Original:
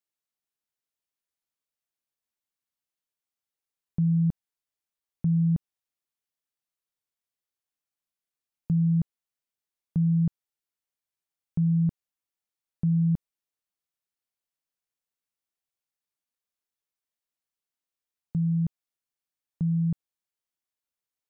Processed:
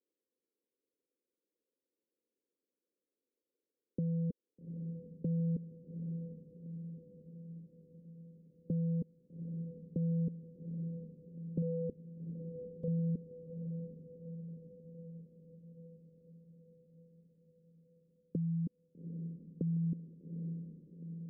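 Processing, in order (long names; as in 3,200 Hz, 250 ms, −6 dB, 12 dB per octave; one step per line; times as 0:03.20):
high-pass filter 280 Hz 24 dB per octave
0:11.62–0:12.88: leveller curve on the samples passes 2
wave folding −39 dBFS
downward compressor, threshold −49 dBFS, peak gain reduction 7.5 dB
elliptic low-pass filter 510 Hz, stop band 40 dB
feedback delay with all-pass diffusion 814 ms, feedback 62%, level −8 dB
level +16 dB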